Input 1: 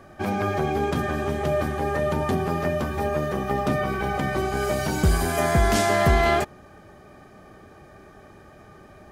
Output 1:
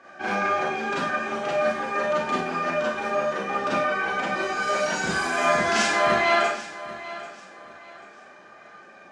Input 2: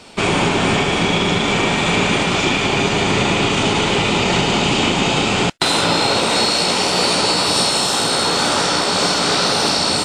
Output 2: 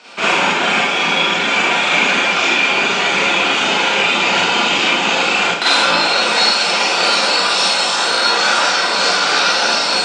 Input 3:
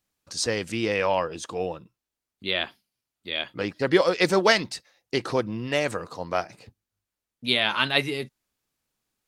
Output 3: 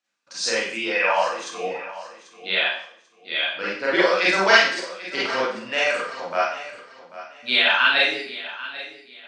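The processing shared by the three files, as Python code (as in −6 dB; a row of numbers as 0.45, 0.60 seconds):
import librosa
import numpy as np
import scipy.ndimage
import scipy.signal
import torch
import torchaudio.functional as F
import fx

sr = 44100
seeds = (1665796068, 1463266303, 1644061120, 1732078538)

y = fx.dereverb_blind(x, sr, rt60_s=1.3)
y = fx.cabinet(y, sr, low_hz=360.0, low_slope=12, high_hz=7200.0, hz=(400.0, 1500.0, 2500.0), db=(-6, 7, 5))
y = fx.echo_feedback(y, sr, ms=790, feedback_pct=29, wet_db=-15.5)
y = fx.rev_schroeder(y, sr, rt60_s=0.55, comb_ms=32, drr_db=-7.5)
y = F.gain(torch.from_numpy(y), -3.5).numpy()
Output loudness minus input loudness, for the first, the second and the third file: −0.5, +2.5, +4.5 LU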